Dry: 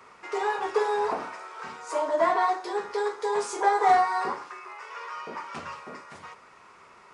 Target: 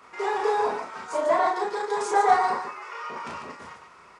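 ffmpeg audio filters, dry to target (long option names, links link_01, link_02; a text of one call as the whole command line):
ffmpeg -i in.wav -af "atempo=1.7,aecho=1:1:34.99|145.8:0.794|0.501" out.wav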